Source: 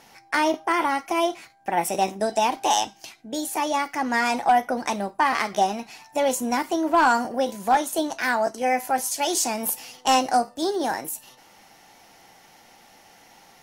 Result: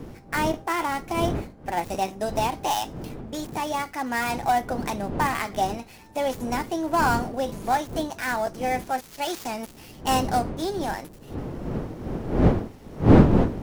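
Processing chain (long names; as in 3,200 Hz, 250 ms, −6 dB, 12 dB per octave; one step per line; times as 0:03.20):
gap after every zero crossing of 0.071 ms
wind on the microphone 310 Hz −24 dBFS
level −3.5 dB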